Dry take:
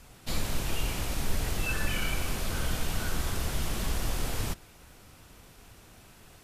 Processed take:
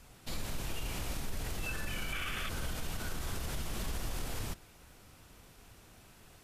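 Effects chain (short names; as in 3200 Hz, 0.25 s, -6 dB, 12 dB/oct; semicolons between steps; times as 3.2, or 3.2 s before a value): spectral gain 2.13–2.49, 1100–3600 Hz +11 dB; limiter -24 dBFS, peak gain reduction 9 dB; gain -4 dB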